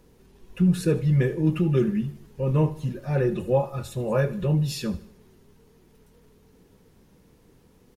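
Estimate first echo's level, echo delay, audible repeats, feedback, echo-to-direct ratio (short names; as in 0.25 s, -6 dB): -17.5 dB, 77 ms, 3, 45%, -16.5 dB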